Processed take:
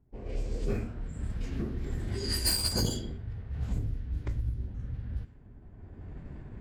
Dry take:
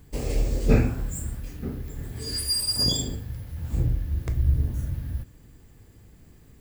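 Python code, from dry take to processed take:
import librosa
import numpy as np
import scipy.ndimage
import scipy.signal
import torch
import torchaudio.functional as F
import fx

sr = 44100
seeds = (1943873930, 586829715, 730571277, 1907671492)

y = fx.doppler_pass(x, sr, speed_mps=7, closest_m=2.7, pass_at_s=2.26)
y = fx.recorder_agc(y, sr, target_db=-23.5, rise_db_per_s=17.0, max_gain_db=30)
y = fx.env_lowpass(y, sr, base_hz=930.0, full_db=-24.5)
y = fx.pitch_keep_formants(y, sr, semitones=-2.0)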